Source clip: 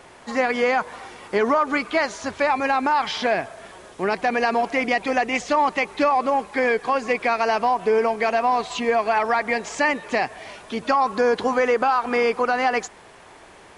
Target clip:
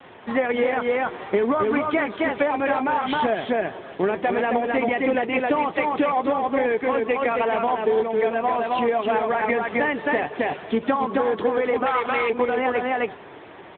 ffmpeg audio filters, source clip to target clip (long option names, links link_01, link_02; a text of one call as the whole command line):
ffmpeg -i in.wav -filter_complex "[0:a]flanger=delay=3.6:depth=3.8:regen=73:speed=0.64:shape=triangular,asettb=1/sr,asplit=3[link_01][link_02][link_03];[link_01]atrim=end=7.074[link_04];[link_02]atrim=start=7.07:end=8,asetpts=PTS-STARTPTS,afade=type=in:duration=0.004:curve=qsin,afade=type=out:start_time=0.926:duration=0.004:curve=qsin,highpass=frequency=170:width=0.5412,highpass=frequency=170:width=1.3066[link_05];[link_03]atrim=start=7.996[link_06];[link_04][link_05]acrossfade=duration=0.004:curve1=hsin:curve2=qsin[link_07];[link_07][link_06]acrossfade=duration=0.004:curve1=qsin:curve2=hsin,aecho=1:1:266:0.631,adynamicequalizer=threshold=0.0141:dfrequency=390:dqfactor=1.5:tfrequency=390:tqfactor=1.5:attack=5:release=100:ratio=0.375:range=2.5:mode=boostabove:tftype=bell,asplit=2[link_08][link_09];[link_09]acrusher=samples=33:mix=1:aa=0.000001,volume=-11dB[link_10];[link_08][link_10]amix=inputs=2:normalize=0,asplit=3[link_11][link_12][link_13];[link_11]afade=type=out:start_time=4.08:duration=0.02[link_14];[link_12]bandreject=frequency=50:width_type=h:width=6,bandreject=frequency=100:width_type=h:width=6,bandreject=frequency=150:width_type=h:width=6,bandreject=frequency=200:width_type=h:width=6,bandreject=frequency=250:width_type=h:width=6,bandreject=frequency=300:width_type=h:width=6,bandreject=frequency=350:width_type=h:width=6,bandreject=frequency=400:width_type=h:width=6,afade=type=in:start_time=4.08:duration=0.02,afade=type=out:start_time=4.82:duration=0.02[link_15];[link_13]afade=type=in:start_time=4.82:duration=0.02[link_16];[link_14][link_15][link_16]amix=inputs=3:normalize=0,acompressor=threshold=-25dB:ratio=10,asettb=1/sr,asplit=3[link_17][link_18][link_19];[link_17]atrim=end=11.864[link_20];[link_18]atrim=start=11.86:end=12.3,asetpts=PTS-STARTPTS,afade=type=in:duration=0.004:curve=qsin,afade=type=out:start_time=0.436:duration=0.004:curve=qsin,tiltshelf=frequency=820:gain=-7.5[link_21];[link_19]atrim=start=12.296[link_22];[link_20][link_21]acrossfade=duration=0.004:curve1=hsin:curve2=qsin[link_23];[link_23][link_22]acrossfade=duration=0.004:curve1=qsin:curve2=hsin,volume=7.5dB" -ar 8000 -c:a libopencore_amrnb -b:a 10200 out.amr